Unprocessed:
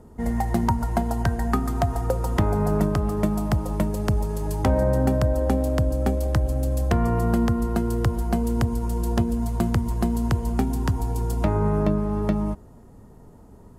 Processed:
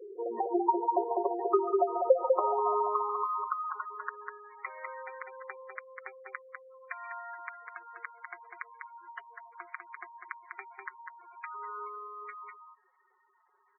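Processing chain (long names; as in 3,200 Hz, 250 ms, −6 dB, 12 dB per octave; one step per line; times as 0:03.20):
high-pass filter sweep 430 Hz → 2,100 Hz, 0:01.63–0:04.46
comb filter 5.5 ms, depth 56%
in parallel at −2 dB: downward compressor 16 to 1, threshold −35 dBFS, peak gain reduction 24.5 dB
on the sum: loudspeaker in its box 230–2,900 Hz, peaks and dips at 230 Hz −6 dB, 410 Hz +8 dB, 690 Hz −3 dB, 1,100 Hz +5 dB, 1,800 Hz −4 dB, 2,700 Hz −10 dB
on a send: single-tap delay 199 ms −4.5 dB
on the sum: gate on every frequency bin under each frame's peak −10 dB strong
level −6.5 dB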